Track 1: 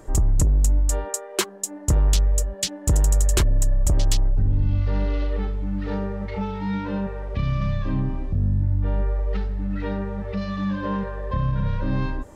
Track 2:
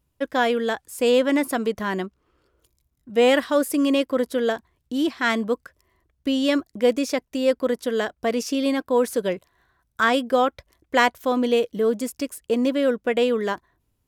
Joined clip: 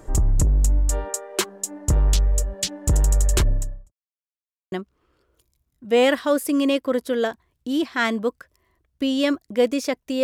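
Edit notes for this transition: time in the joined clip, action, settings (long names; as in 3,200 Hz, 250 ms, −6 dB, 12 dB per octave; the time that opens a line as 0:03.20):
track 1
0:03.49–0:03.92: fade out quadratic
0:03.92–0:04.72: silence
0:04.72: continue with track 2 from 0:01.97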